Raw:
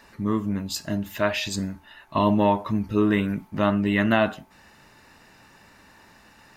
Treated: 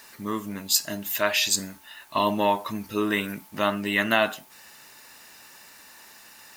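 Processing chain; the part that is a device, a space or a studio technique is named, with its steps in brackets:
turntable without a phono preamp (RIAA equalisation recording; white noise bed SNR 30 dB)

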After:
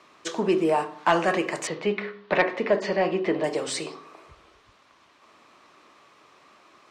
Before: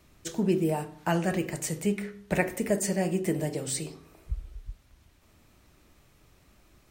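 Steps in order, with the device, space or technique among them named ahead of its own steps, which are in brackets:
intercom (band-pass filter 400–4,700 Hz; parametric band 1,100 Hz +10 dB 0.34 octaves; soft clipping −19.5 dBFS, distortion −17 dB)
0:01.67–0:03.44: Chebyshev low-pass filter 4,200 Hz, order 3
level +9 dB

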